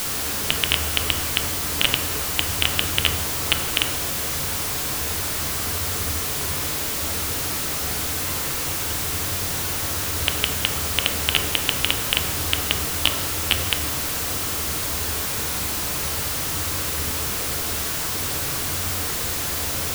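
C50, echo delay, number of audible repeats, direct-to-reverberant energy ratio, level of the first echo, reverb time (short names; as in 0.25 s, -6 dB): 4.5 dB, none, none, 1.5 dB, none, 1.1 s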